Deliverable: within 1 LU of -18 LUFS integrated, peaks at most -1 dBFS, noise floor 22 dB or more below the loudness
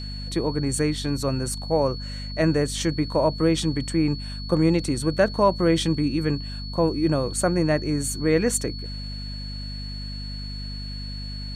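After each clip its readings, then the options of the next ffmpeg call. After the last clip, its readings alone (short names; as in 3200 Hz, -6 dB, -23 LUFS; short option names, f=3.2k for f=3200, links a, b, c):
hum 50 Hz; harmonics up to 250 Hz; hum level -31 dBFS; steady tone 4400 Hz; tone level -37 dBFS; loudness -24.5 LUFS; peak -7.0 dBFS; loudness target -18.0 LUFS
-> -af "bandreject=f=50:t=h:w=4,bandreject=f=100:t=h:w=4,bandreject=f=150:t=h:w=4,bandreject=f=200:t=h:w=4,bandreject=f=250:t=h:w=4"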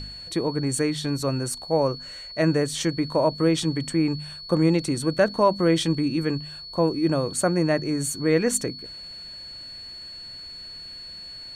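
hum none; steady tone 4400 Hz; tone level -37 dBFS
-> -af "bandreject=f=4.4k:w=30"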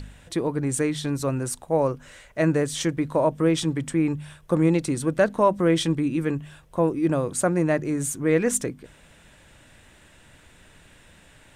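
steady tone none; loudness -24.0 LUFS; peak -8.0 dBFS; loudness target -18.0 LUFS
-> -af "volume=6dB"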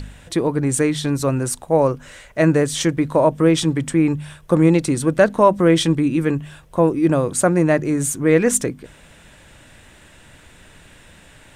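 loudness -18.0 LUFS; peak -2.0 dBFS; noise floor -48 dBFS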